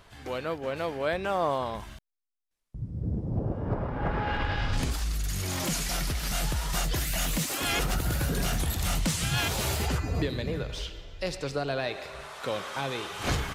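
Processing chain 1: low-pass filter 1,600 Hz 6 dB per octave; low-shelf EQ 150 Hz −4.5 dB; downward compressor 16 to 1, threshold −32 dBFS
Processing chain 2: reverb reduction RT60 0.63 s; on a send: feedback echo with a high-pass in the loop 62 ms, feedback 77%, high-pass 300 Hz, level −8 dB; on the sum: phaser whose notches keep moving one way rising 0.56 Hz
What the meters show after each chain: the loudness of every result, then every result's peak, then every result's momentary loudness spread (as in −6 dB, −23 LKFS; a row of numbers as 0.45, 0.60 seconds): −38.0, −32.0 LKFS; −23.0, −18.0 dBFS; 5, 10 LU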